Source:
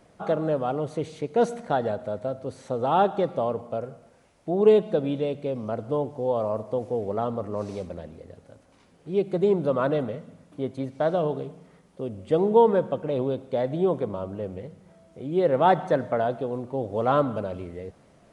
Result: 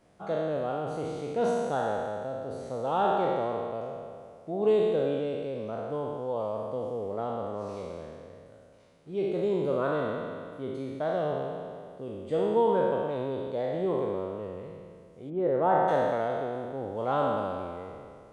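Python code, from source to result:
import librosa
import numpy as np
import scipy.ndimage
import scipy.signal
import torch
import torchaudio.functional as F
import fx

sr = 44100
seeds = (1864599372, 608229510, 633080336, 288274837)

y = fx.spec_trails(x, sr, decay_s=2.15)
y = fx.lowpass(y, sr, hz=1500.0, slope=12, at=(15.29, 15.87), fade=0.02)
y = y * librosa.db_to_amplitude(-8.5)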